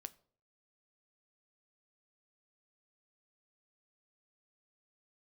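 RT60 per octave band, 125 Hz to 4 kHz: 0.60, 0.55, 0.60, 0.45, 0.35, 0.35 s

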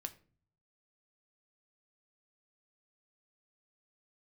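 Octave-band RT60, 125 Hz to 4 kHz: 0.95, 0.65, 0.50, 0.35, 0.35, 0.30 s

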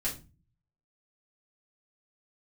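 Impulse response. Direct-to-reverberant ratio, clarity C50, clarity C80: -7.5 dB, 10.5 dB, 17.0 dB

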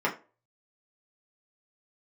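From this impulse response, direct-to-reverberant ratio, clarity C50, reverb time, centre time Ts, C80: -4.0 dB, 13.5 dB, 0.35 s, 15 ms, 19.0 dB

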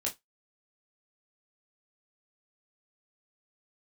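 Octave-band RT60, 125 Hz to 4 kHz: 0.15, 0.15, 0.15, 0.15, 0.15, 0.15 s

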